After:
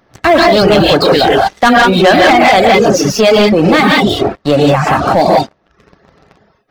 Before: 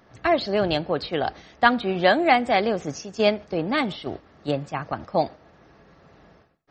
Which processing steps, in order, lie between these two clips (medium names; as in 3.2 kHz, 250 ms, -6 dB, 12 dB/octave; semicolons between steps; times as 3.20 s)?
gated-style reverb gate 210 ms rising, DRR -2.5 dB; waveshaping leveller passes 3; reverb removal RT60 0.53 s; loudness maximiser +9.5 dB; trim -1 dB